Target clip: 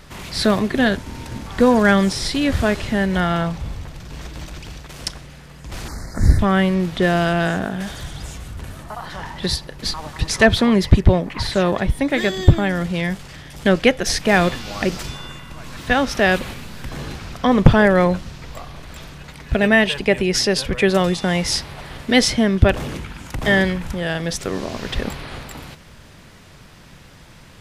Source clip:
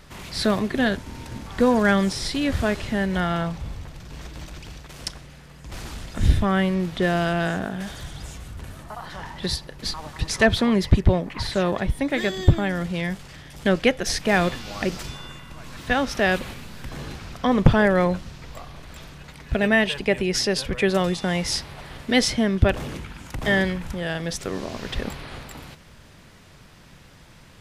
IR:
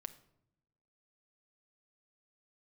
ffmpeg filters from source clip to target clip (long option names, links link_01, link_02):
-filter_complex "[0:a]asettb=1/sr,asplit=3[link_01][link_02][link_03];[link_01]atrim=end=5.884[link_04];[link_02]atrim=start=5.88:end=6.39,asetpts=PTS-STARTPTS,afade=type=in:duration=0.004:curve=qsin,afade=type=out:start_time=0.506:duration=0.004:curve=qsin,asuperstop=centerf=3000:order=8:qfactor=1.4[link_05];[link_03]atrim=start=6.386[link_06];[link_04][link_05]acrossfade=duration=0.004:curve1=hsin:curve2=qsin[link_07];[link_07][link_06]acrossfade=duration=0.004:curve1=qsin:curve2=hsin,volume=4.5dB"